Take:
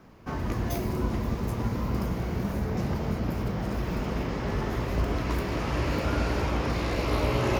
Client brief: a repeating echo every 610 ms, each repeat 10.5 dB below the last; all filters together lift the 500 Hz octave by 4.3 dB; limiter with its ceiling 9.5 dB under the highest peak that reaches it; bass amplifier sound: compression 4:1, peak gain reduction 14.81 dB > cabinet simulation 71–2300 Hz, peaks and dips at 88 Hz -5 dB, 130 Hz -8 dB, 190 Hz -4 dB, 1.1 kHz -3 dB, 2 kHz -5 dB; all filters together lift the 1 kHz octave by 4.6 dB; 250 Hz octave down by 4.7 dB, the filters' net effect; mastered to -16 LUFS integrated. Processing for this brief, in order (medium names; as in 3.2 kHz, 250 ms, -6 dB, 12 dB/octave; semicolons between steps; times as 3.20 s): peaking EQ 250 Hz -6.5 dB; peaking EQ 500 Hz +6 dB; peaking EQ 1 kHz +6 dB; peak limiter -19.5 dBFS; feedback delay 610 ms, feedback 30%, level -10.5 dB; compression 4:1, threshold -41 dBFS; cabinet simulation 71–2300 Hz, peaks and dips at 88 Hz -5 dB, 130 Hz -8 dB, 190 Hz -4 dB, 1.1 kHz -3 dB, 2 kHz -5 dB; trim +28.5 dB